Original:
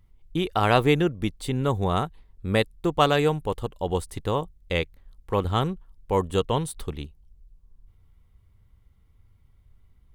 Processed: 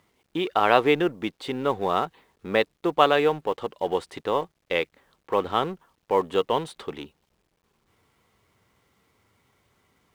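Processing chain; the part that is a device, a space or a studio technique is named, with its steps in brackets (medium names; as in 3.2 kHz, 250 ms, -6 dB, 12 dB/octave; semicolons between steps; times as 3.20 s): phone line with mismatched companding (band-pass 330–3400 Hz; companding laws mixed up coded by mu); trim +2 dB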